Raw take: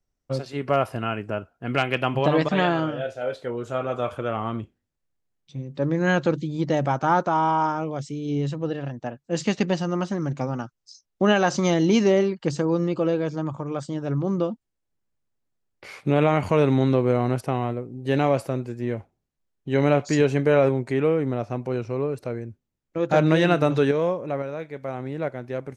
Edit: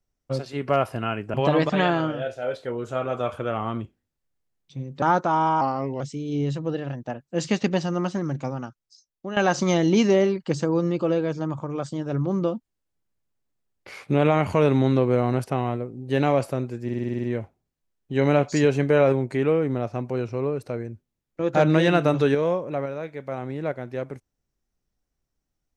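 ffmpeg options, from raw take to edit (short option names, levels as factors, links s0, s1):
-filter_complex "[0:a]asplit=14[s0][s1][s2][s3][s4][s5][s6][s7][s8][s9][s10][s11][s12][s13];[s0]atrim=end=1.342[s14];[s1]atrim=start=2.128:end=5.812[s15];[s2]atrim=start=7.038:end=7.634[s16];[s3]atrim=start=7.63:end=7.97,asetpts=PTS-STARTPTS,asetrate=37926,aresample=44100[s17];[s4]atrim=start=7.966:end=11.33,asetpts=PTS-STARTPTS,afade=t=out:st=2.154:d=1.21:silence=0.16788[s18];[s5]atrim=start=11.33:end=18.852,asetpts=PTS-STARTPTS,afade=t=in:d=0.004:c=hsin:silence=0.16788[s19];[s6]atrim=start=18.798:end=18.852[s20];[s7]atrim=start=18.798:end=18.852[s21];[s8]atrim=start=18.798:end=18.852[s22];[s9]atrim=start=18.798:end=18.852[s23];[s10]atrim=start=18.798:end=18.852[s24];[s11]atrim=start=18.798:end=18.852[s25];[s12]atrim=start=18.798:end=18.852[s26];[s13]atrim=start=18.798[s27];[s14][s15]acrossfade=d=0.004:c1=hsin:c2=hsin[s28];[s28][s16]acrossfade=d=0.004:c1=hsin:c2=hsin[s29];[s29][s17]acrossfade=d=0.004:c1=hsin:c2=hsin[s30];[s18][s19]concat=n=2:v=0:a=1[s31];[s30][s31]acrossfade=d=0.004:c1=hsin:c2=hsin[s32];[s32][s20]acrossfade=d=0.004:c1=hsin:c2=hsin[s33];[s33][s21]acrossfade=d=0.004:c1=hsin:c2=hsin[s34];[s34][s22]acrossfade=d=0.004:c1=hsin:c2=hsin[s35];[s35][s23]acrossfade=d=0.004:c1=hsin:c2=hsin[s36];[s36][s24]acrossfade=d=0.004:c1=hsin:c2=hsin[s37];[s37][s25]acrossfade=d=0.004:c1=hsin:c2=hsin[s38];[s38][s26]acrossfade=d=0.004:c1=hsin:c2=hsin[s39];[s39][s27]acrossfade=d=0.004:c1=hsin:c2=hsin"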